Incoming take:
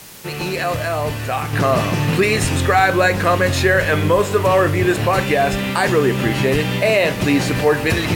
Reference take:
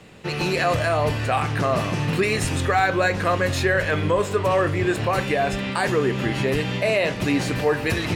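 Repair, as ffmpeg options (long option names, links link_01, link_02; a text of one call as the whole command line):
ffmpeg -i in.wav -af "adeclick=threshold=4,afwtdn=0.011,asetnsamples=nb_out_samples=441:pad=0,asendcmd='1.53 volume volume -5.5dB',volume=0dB" out.wav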